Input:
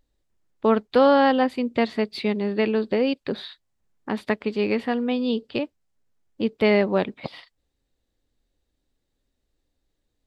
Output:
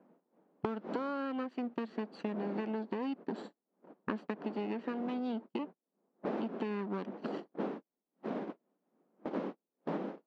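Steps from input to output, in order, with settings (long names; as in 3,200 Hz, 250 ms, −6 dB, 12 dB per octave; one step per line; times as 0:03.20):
lower of the sound and its delayed copy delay 0.67 ms
wind on the microphone 480 Hz −36 dBFS
noise gate −33 dBFS, range −43 dB
high-shelf EQ 2,100 Hz −9.5 dB
downward compressor, threshold −25 dBFS, peak gain reduction 10 dB
linear-phase brick-wall high-pass 170 Hz
high-frequency loss of the air 120 metres
multiband upward and downward compressor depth 100%
level −7.5 dB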